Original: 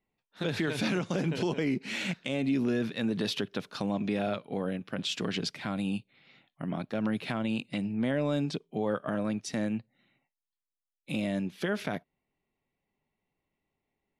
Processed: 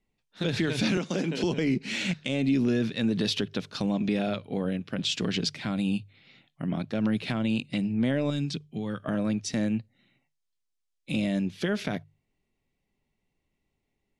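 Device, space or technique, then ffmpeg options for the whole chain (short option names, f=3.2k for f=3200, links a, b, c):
smiley-face EQ: -filter_complex "[0:a]lowpass=6.8k,bandreject=f=50:t=h:w=6,bandreject=f=100:t=h:w=6,bandreject=f=150:t=h:w=6,asettb=1/sr,asplit=3[a][b][c];[a]atrim=end=0.974[d];[b]atrim=start=0.97:end=1.44,asetpts=PTS-STARTPTS,afade=t=in:d=0.004:c=qsin,afade=t=out:st=0.466:d=0.004:c=qsin,highpass=f=190:w=0.5412,highpass=f=190:w=1.3066[e];[c]atrim=start=1.436[f];[d][e]acrossfade=d=0.004:c1=hsin:c2=qsin[g];[g][f]acrossfade=d=0.004:c1=qsin:c2=hsin,asettb=1/sr,asplit=3[h][i][j];[h]atrim=end=8.304[k];[i]atrim=start=8.3:end=9.05,asetpts=PTS-STARTPTS,afade=t=in:d=0.004:c=qsin,afade=t=out:st=0.746:d=0.004:c=qsin,equalizer=f=590:t=o:w=1.7:g=-11.5[l];[j]atrim=start=9.046[m];[k][l]acrossfade=d=0.004:c1=hsin:c2=qsin[n];[n][m]acrossfade=d=0.004:c1=qsin:c2=hsin,lowshelf=f=87:g=9,equalizer=f=990:t=o:w=1.9:g=-5,highshelf=f=6.1k:g=8,volume=3.5dB"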